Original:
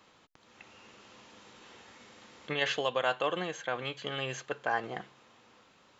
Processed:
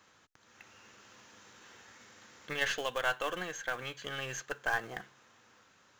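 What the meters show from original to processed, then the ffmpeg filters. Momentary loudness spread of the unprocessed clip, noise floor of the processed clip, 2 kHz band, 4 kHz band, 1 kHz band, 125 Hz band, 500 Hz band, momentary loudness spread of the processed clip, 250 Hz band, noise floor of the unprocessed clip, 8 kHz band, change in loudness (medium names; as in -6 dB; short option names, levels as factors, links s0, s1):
23 LU, -65 dBFS, +1.0 dB, -3.0 dB, -3.5 dB, -4.5 dB, -5.5 dB, 22 LU, -6.0 dB, -63 dBFS, no reading, -2.0 dB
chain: -af "acrusher=bits=5:mode=log:mix=0:aa=0.000001,equalizer=f=100:t=o:w=0.67:g=5,equalizer=f=1600:t=o:w=0.67:g=8,equalizer=f=6300:t=o:w=0.67:g=9,aeval=exprs='0.251*(cos(1*acos(clip(val(0)/0.251,-1,1)))-cos(1*PI/2))+0.0158*(cos(6*acos(clip(val(0)/0.251,-1,1)))-cos(6*PI/2))':c=same,volume=0.531"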